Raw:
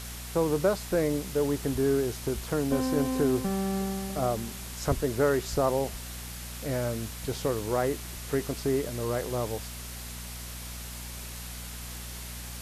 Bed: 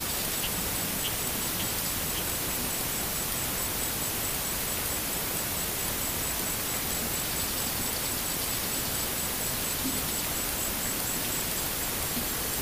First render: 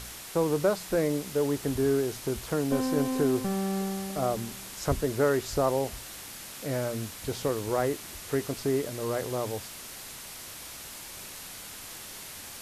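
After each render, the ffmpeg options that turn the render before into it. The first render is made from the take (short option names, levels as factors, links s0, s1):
-af "bandreject=f=60:t=h:w=4,bandreject=f=120:t=h:w=4,bandreject=f=180:t=h:w=4,bandreject=f=240:t=h:w=4"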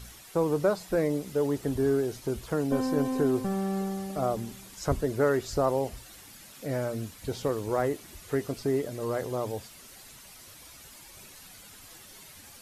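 -af "afftdn=nr=10:nf=-43"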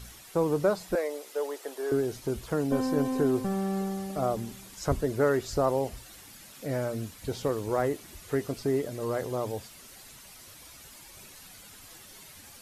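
-filter_complex "[0:a]asettb=1/sr,asplit=3[s0][s1][s2];[s0]atrim=end=0.954[s3];[s1]atrim=start=0.95:end=1.92,asetpts=PTS-STARTPTS,afade=t=in:d=0.004:c=qsin,afade=t=out:st=0.966:d=0.004:c=qsin,highpass=f=460:w=0.5412,highpass=f=460:w=1.3066[s4];[s2]atrim=start=1.916[s5];[s3][s4]acrossfade=d=0.004:c1=hsin:c2=qsin[s6];[s6][s5]acrossfade=d=0.004:c1=qsin:c2=hsin"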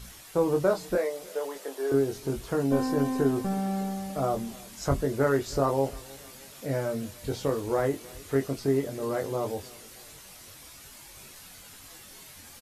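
-filter_complex "[0:a]asplit=2[s0][s1];[s1]adelay=22,volume=0.562[s2];[s0][s2]amix=inputs=2:normalize=0,aecho=1:1:313|626|939:0.0708|0.0347|0.017"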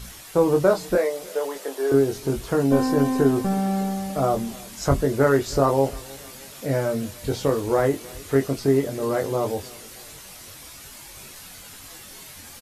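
-af "volume=2"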